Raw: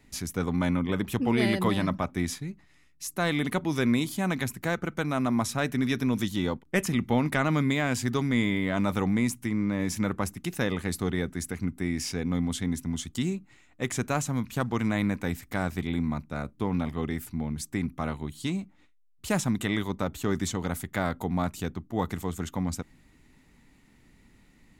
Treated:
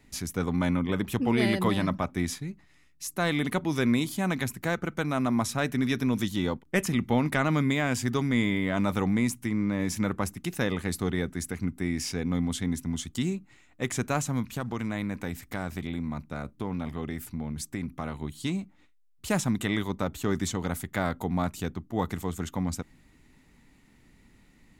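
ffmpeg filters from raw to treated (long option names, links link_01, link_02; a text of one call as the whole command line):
ffmpeg -i in.wav -filter_complex "[0:a]asettb=1/sr,asplit=3[link_01][link_02][link_03];[link_01]atrim=end=7.594[link_04];[link_02]atrim=start=7.59:end=8.77,asetpts=PTS-STARTPTS,afade=type=in:duration=0.004:curve=qsin,afade=type=out:start_time=1.176:duration=0.004:curve=qsin,bandreject=frequency=4100:width=12[link_05];[link_03]atrim=start=8.766[link_06];[link_04][link_05]acrossfade=duration=0.004:curve1=hsin:curve2=qsin[link_07];[link_07][link_06]acrossfade=duration=0.004:curve1=qsin:curve2=hsin,asettb=1/sr,asplit=3[link_08][link_09][link_10];[link_08]atrim=end=14.524[link_11];[link_09]atrim=start=14.52:end=18.22,asetpts=PTS-STARTPTS,afade=type=in:duration=0.004:curve=qsin,afade=type=out:start_time=3.696:duration=0.004:curve=qsin,acompressor=threshold=-29dB:ratio=2.5:attack=3.2:release=140:knee=1:detection=peak[link_12];[link_10]atrim=start=18.216[link_13];[link_11][link_12]acrossfade=duration=0.004:curve1=hsin:curve2=qsin[link_14];[link_14][link_13]acrossfade=duration=0.004:curve1=qsin:curve2=hsin" out.wav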